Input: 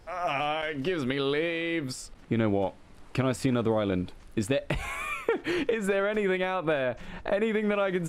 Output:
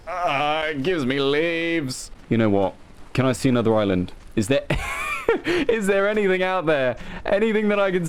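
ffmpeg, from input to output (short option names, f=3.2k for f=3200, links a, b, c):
-af "aeval=exprs='if(lt(val(0),0),0.708*val(0),val(0))':c=same,volume=8.5dB"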